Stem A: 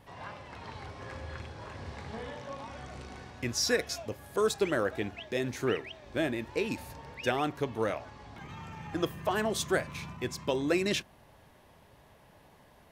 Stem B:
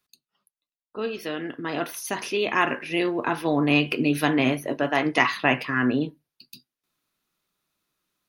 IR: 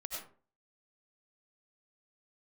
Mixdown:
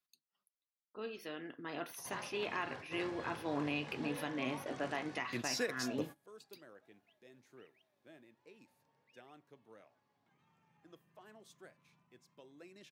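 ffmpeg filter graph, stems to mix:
-filter_complex "[0:a]highpass=f=130:w=0.5412,highpass=f=130:w=1.3066,adelay=1900,volume=0.75[s0];[1:a]lowshelf=f=280:g=-3.5,volume=0.211,asplit=2[s1][s2];[s2]apad=whole_len=653207[s3];[s0][s3]sidechaingate=range=0.0501:threshold=0.00447:ratio=16:detection=peak[s4];[s4][s1]amix=inputs=2:normalize=0,alimiter=level_in=1.12:limit=0.0631:level=0:latency=1:release=332,volume=0.891"

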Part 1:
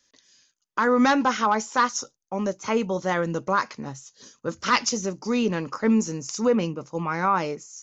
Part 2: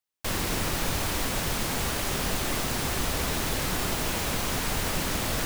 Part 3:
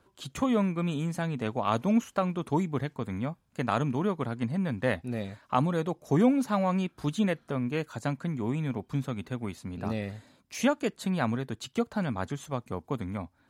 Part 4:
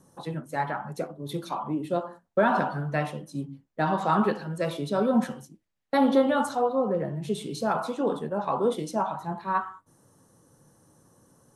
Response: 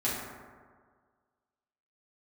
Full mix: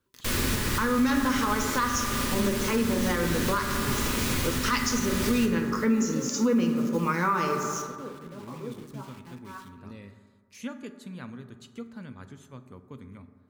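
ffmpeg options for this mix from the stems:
-filter_complex "[0:a]acrusher=bits=7:mix=0:aa=0.000001,volume=1.26,asplit=3[s0][s1][s2];[s1]volume=0.398[s3];[1:a]volume=0.708,asplit=2[s4][s5];[s5]volume=0.631[s6];[2:a]volume=0.237,asplit=2[s7][s8];[s8]volume=0.168[s9];[3:a]aeval=exprs='val(0)*gte(abs(val(0)),0.0211)':c=same,volume=0.188,asplit=2[s10][s11];[s11]volume=0.211[s12];[s2]apad=whole_len=595031[s13];[s7][s13]sidechaincompress=threshold=0.0126:ratio=8:attack=16:release=769[s14];[4:a]atrim=start_sample=2205[s15];[s3][s6][s9][s12]amix=inputs=4:normalize=0[s16];[s16][s15]afir=irnorm=-1:irlink=0[s17];[s0][s4][s14][s10][s17]amix=inputs=5:normalize=0,equalizer=f=730:t=o:w=0.57:g=-13,alimiter=limit=0.168:level=0:latency=1:release=423"

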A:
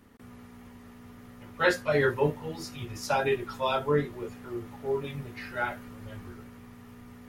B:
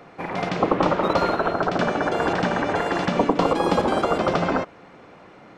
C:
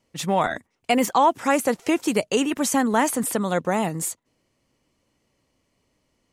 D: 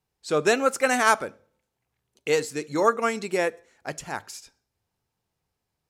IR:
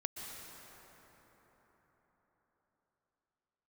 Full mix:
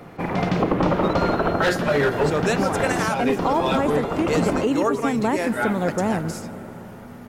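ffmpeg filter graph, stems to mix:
-filter_complex "[0:a]volume=10.6,asoftclip=hard,volume=0.0944,volume=1.33,asplit=3[s0][s1][s2];[s1]volume=0.596[s3];[1:a]lowshelf=f=260:g=11,acontrast=75,volume=0.501[s4];[2:a]acrossover=split=3600[s5][s6];[s6]acompressor=threshold=0.0178:ratio=4:attack=1:release=60[s7];[s5][s7]amix=inputs=2:normalize=0,tiltshelf=f=810:g=5,adelay=2300,volume=0.631,asplit=2[s8][s9];[s9]volume=0.376[s10];[3:a]adelay=2000,volume=1.06[s11];[s2]apad=whole_len=246001[s12];[s4][s12]sidechaincompress=threshold=0.0447:ratio=8:attack=16:release=1040[s13];[4:a]atrim=start_sample=2205[s14];[s3][s10]amix=inputs=2:normalize=0[s15];[s15][s14]afir=irnorm=-1:irlink=0[s16];[s0][s13][s8][s11][s16]amix=inputs=5:normalize=0,alimiter=limit=0.282:level=0:latency=1:release=267"

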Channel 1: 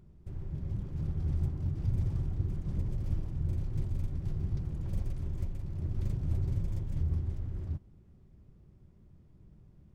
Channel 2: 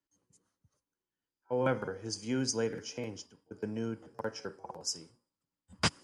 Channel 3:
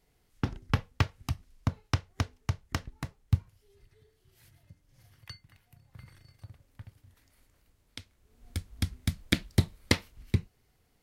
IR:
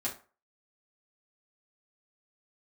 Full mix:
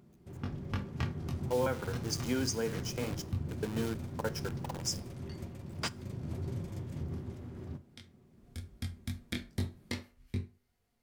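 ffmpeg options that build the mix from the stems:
-filter_complex "[0:a]highpass=170,volume=1.19,asplit=2[s0][s1];[s1]volume=0.335[s2];[1:a]lowshelf=f=190:g=-7.5,acrusher=bits=8:dc=4:mix=0:aa=0.000001,volume=1.19,asplit=3[s3][s4][s5];[s4]volume=0.133[s6];[2:a]flanger=delay=20:depth=4.8:speed=2.4,volume=0.316,asplit=2[s7][s8];[s8]volume=0.668[s9];[s5]apad=whole_len=486101[s10];[s7][s10]sidechaincompress=threshold=0.0112:ratio=8:attack=16:release=470[s11];[3:a]atrim=start_sample=2205[s12];[s2][s6][s9]amix=inputs=3:normalize=0[s13];[s13][s12]afir=irnorm=-1:irlink=0[s14];[s0][s3][s11][s14]amix=inputs=4:normalize=0,alimiter=limit=0.0841:level=0:latency=1:release=462"

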